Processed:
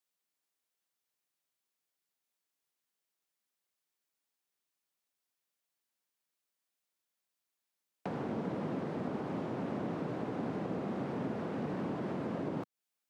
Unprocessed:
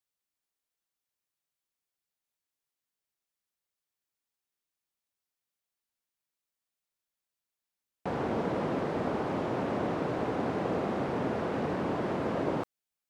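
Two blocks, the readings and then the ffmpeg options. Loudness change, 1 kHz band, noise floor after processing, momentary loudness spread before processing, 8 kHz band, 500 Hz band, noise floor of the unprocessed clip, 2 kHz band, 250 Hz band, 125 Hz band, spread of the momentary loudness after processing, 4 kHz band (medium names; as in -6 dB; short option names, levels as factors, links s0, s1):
-6.0 dB, -8.5 dB, under -85 dBFS, 2 LU, no reading, -7.5 dB, under -85 dBFS, -8.5 dB, -3.5 dB, -3.5 dB, 3 LU, -8.5 dB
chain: -filter_complex "[0:a]highpass=160,acrossover=split=240[s0][s1];[s1]acompressor=threshold=0.00891:ratio=6[s2];[s0][s2]amix=inputs=2:normalize=0,volume=1.19"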